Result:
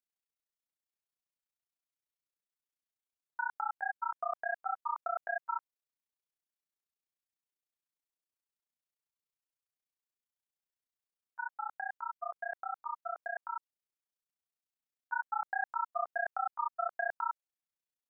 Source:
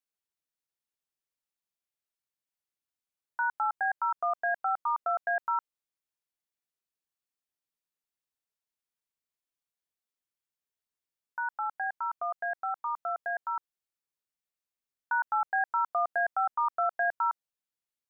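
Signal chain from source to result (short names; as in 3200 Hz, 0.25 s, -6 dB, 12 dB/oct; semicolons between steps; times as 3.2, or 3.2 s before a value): AM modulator 30 Hz, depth 95%; gain -2.5 dB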